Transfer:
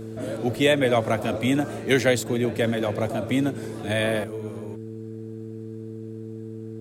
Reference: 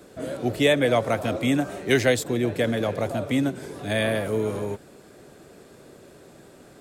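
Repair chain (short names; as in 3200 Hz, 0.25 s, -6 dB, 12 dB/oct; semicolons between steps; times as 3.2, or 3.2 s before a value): de-hum 111 Hz, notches 4; gain correction +10 dB, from 4.24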